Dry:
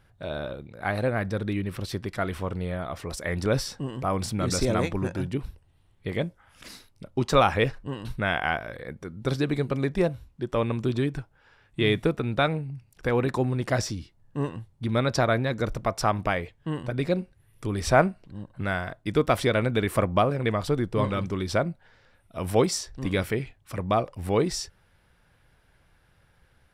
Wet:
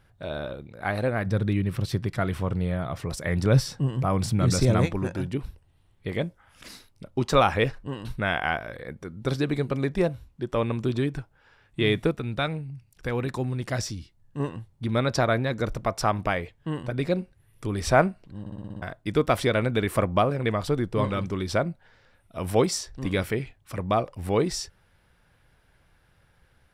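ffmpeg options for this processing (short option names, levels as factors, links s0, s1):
-filter_complex "[0:a]asettb=1/sr,asplit=3[s0][s1][s2];[s0]atrim=end=1.264[s3];[s1]atrim=start=1.26:end=4.86,asetpts=PTS-STARTPTS,afade=t=in:d=0.004:c=qsin,afade=t=out:st=3.596:d=0.004:c=qsin,equalizer=f=130:w=1.5:g=10[s4];[s2]atrim=start=4.856[s5];[s3][s4]acrossfade=d=0.004:c1=hsin:c2=qsin[s6];[s6][s5]acrossfade=d=0.004:c1=qsin:c2=hsin,asettb=1/sr,asplit=3[s7][s8][s9];[s7]atrim=end=12.114[s10];[s8]atrim=start=12.11:end=14.4,asetpts=PTS-STARTPTS,afade=t=in:d=0.004:c=qsin,afade=t=out:st=2.286:d=0.004:c=qsin,equalizer=f=610:w=0.34:g=-5.5[s11];[s9]atrim=start=14.396[s12];[s10][s11]acrossfade=d=0.004:c1=hsin:c2=qsin[s13];[s13][s12]acrossfade=d=0.004:c1=qsin:c2=hsin,asplit=8[s14][s15][s16][s17][s18][s19][s20][s21];[s14]atrim=end=18.462[s22];[s15]atrim=start=18.398:end=18.462[s23];[s16]atrim=start=18.398:end=18.462[s24];[s17]atrim=start=18.398:end=18.462[s25];[s18]atrim=start=18.398:end=18.462[s26];[s19]atrim=start=18.398:end=18.462[s27];[s20]atrim=start=18.398:end=18.462[s28];[s21]atrim=start=18.818[s29];[s22][s23]acrossfade=d=0.004:c1=hsin:c2=hsin[s30];[s30][s24]acrossfade=d=0.004:c1=hsin:c2=hsin[s31];[s31][s25]acrossfade=d=0.004:c1=hsin:c2=hsin[s32];[s32][s26]acrossfade=d=0.004:c1=hsin:c2=hsin[s33];[s33][s27]acrossfade=d=0.004:c1=hsin:c2=hsin[s34];[s34][s28]acrossfade=d=0.004:c1=hsin:c2=hsin[s35];[s35][s29]acrossfade=d=0.004:c1=hsin:c2=hsin"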